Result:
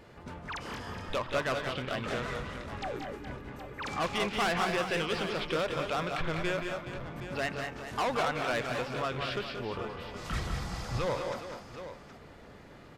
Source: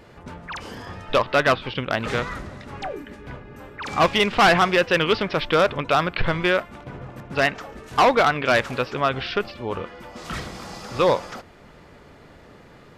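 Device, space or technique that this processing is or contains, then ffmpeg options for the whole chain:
soft clipper into limiter: -filter_complex "[0:a]asoftclip=type=tanh:threshold=-17dB,alimiter=limit=-21.5dB:level=0:latency=1:release=383,aecho=1:1:177|200|214|418|770:0.398|0.398|0.2|0.251|0.251,asettb=1/sr,asplit=3[link_01][link_02][link_03];[link_01]atrim=end=9.694[link_04];[link_02]atrim=start=9.69:end=11.07,asetpts=PTS-STARTPTS,afade=type=in:duration=0.004:curve=qsin,afade=type=out:start_time=1.376:duration=0.004:curve=qsin,asubboost=boost=9.5:cutoff=140[link_05];[link_03]atrim=start=11.066[link_06];[link_04][link_05]acrossfade=duration=0.004:curve1=hsin:curve2=qsin[link_07];[link_07][link_06]acrossfade=duration=0.004:curve1=qsin:curve2=hsin,volume=-5.5dB"

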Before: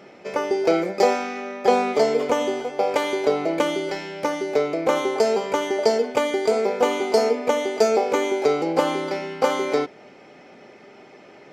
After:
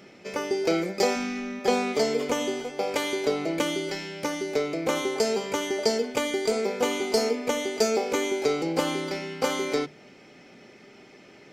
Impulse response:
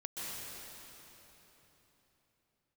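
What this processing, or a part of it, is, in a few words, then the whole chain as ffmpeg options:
smiley-face EQ: -filter_complex "[0:a]bandreject=frequency=50:width_type=h:width=6,bandreject=frequency=100:width_type=h:width=6,bandreject=frequency=150:width_type=h:width=6,asplit=3[link_01][link_02][link_03];[link_01]afade=type=out:start_time=1.15:duration=0.02[link_04];[link_02]asubboost=boost=12:cutoff=200,afade=type=in:start_time=1.15:duration=0.02,afade=type=out:start_time=1.59:duration=0.02[link_05];[link_03]afade=type=in:start_time=1.59:duration=0.02[link_06];[link_04][link_05][link_06]amix=inputs=3:normalize=0,lowshelf=frequency=130:gain=4,equalizer=frequency=750:width_type=o:width=2.1:gain=-8.5,highshelf=frequency=5600:gain=4.5"

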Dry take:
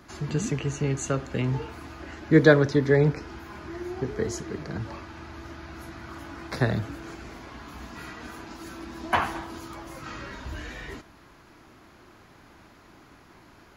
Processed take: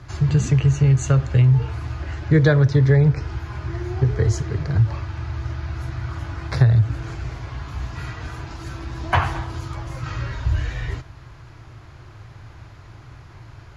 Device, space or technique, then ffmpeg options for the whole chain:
jukebox: -af "lowpass=7800,lowshelf=frequency=160:width_type=q:width=3:gain=10,acompressor=threshold=-16dB:ratio=6,volume=4.5dB"

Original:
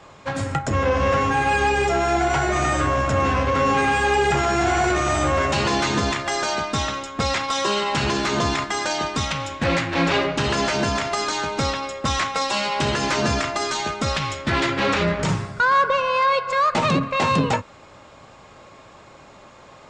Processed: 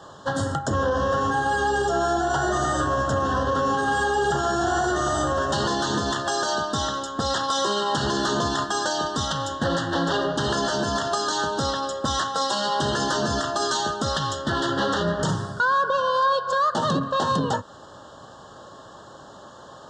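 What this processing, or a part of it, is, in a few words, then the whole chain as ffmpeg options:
PA system with an anti-feedback notch: -af "highpass=frequency=100:poles=1,asuperstop=centerf=2300:order=12:qfactor=2.1,alimiter=limit=-17dB:level=0:latency=1:release=200,volume=2.5dB"

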